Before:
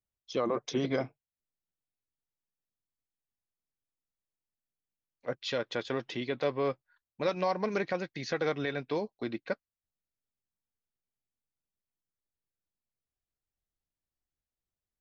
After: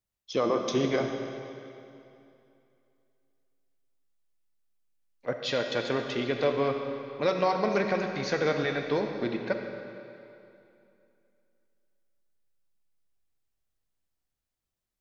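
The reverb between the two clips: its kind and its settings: digital reverb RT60 2.7 s, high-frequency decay 0.9×, pre-delay 5 ms, DRR 4 dB; gain +3.5 dB

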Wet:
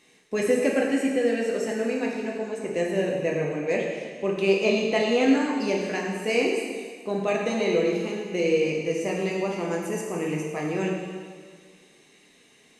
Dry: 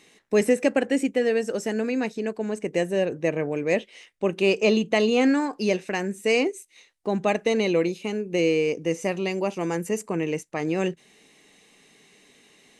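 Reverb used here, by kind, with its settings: plate-style reverb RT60 1.8 s, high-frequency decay 0.95×, DRR -2.5 dB; gain -5 dB

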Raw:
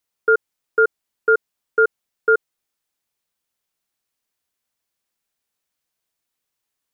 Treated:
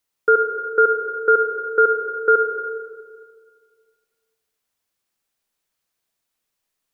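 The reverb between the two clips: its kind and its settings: digital reverb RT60 1.9 s, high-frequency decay 0.55×, pre-delay 20 ms, DRR 4.5 dB; gain +1 dB

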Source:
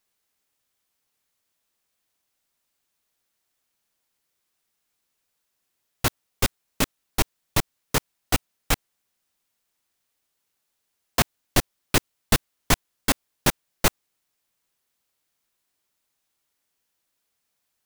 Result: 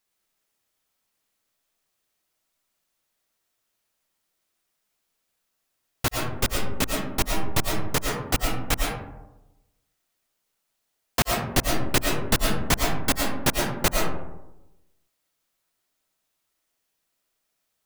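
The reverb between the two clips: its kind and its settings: digital reverb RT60 0.99 s, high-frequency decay 0.35×, pre-delay 70 ms, DRR -0.5 dB; gain -2 dB

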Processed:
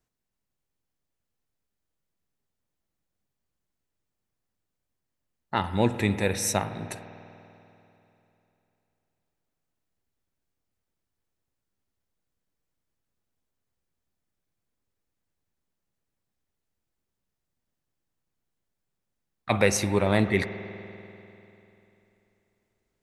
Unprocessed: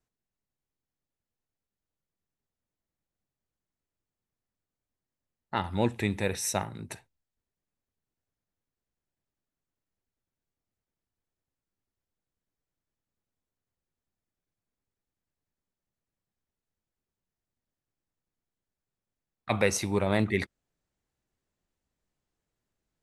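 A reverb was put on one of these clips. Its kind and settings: spring tank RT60 3.1 s, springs 49 ms, chirp 80 ms, DRR 11 dB; gain +3.5 dB

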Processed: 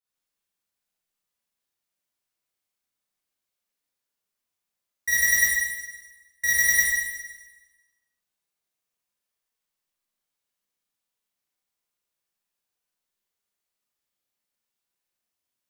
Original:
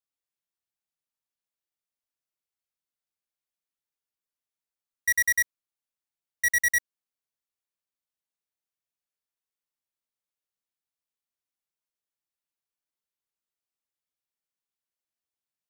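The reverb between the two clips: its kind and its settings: Schroeder reverb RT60 1.2 s, combs from 31 ms, DRR -9.5 dB; gain -2.5 dB

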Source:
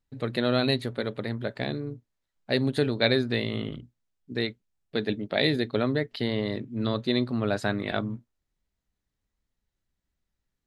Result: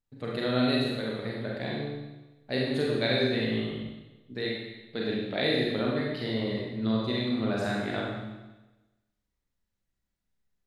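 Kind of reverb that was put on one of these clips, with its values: Schroeder reverb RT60 1.1 s, combs from 32 ms, DRR -4 dB; gain -7 dB

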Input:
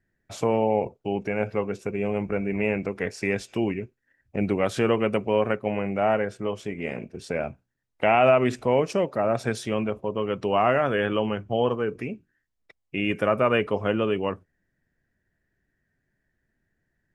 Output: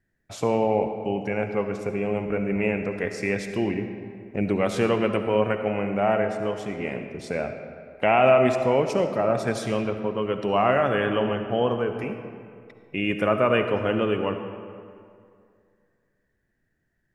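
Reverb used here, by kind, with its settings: digital reverb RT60 2.3 s, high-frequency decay 0.6×, pre-delay 30 ms, DRR 7 dB

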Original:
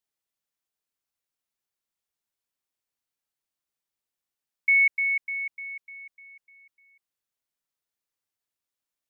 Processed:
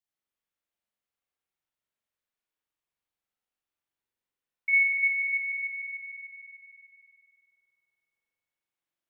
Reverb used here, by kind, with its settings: spring tank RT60 2.4 s, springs 44 ms, chirp 75 ms, DRR -7 dB; gain -7.5 dB

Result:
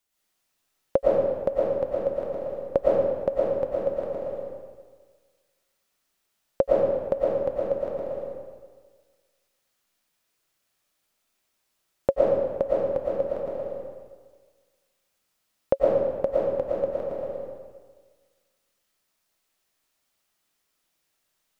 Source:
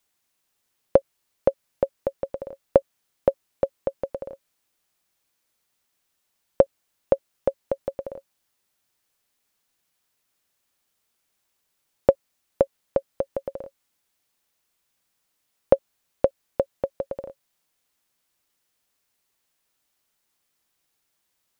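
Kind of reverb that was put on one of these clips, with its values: digital reverb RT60 1.5 s, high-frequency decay 0.8×, pre-delay 75 ms, DRR -6.5 dB; gain -6 dB

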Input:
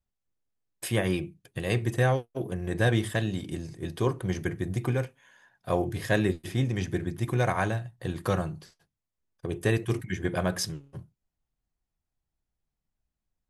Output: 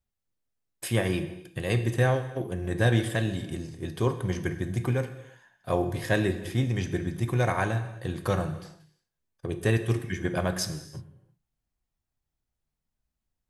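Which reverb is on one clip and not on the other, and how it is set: non-linear reverb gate 0.38 s falling, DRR 9 dB

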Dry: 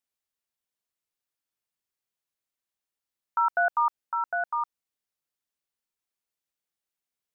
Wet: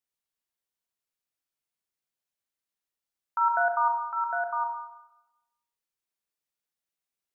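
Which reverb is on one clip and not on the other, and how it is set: Schroeder reverb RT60 0.98 s, combs from 33 ms, DRR 4 dB; gain -3 dB

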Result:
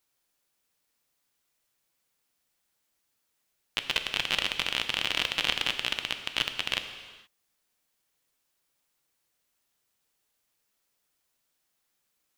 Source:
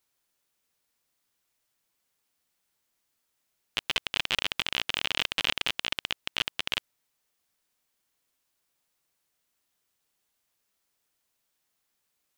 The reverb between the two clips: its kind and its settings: non-linear reverb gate 0.5 s falling, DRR 7 dB

